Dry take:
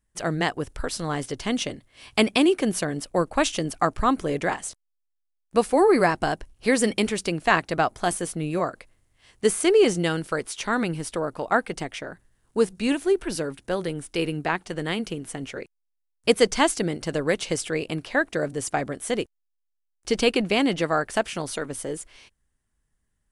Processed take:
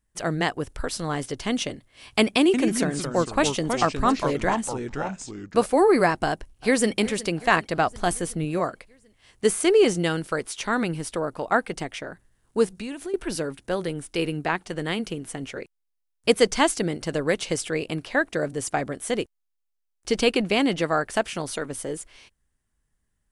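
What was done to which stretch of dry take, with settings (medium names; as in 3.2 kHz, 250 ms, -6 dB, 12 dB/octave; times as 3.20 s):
2.40–5.66 s: ever faster or slower copies 137 ms, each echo -3 st, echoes 2, each echo -6 dB
6.25–6.96 s: echo throw 370 ms, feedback 65%, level -18 dB
7.86–8.45 s: bass shelf 77 Hz +11.5 dB
12.68–13.14 s: compression, threshold -30 dBFS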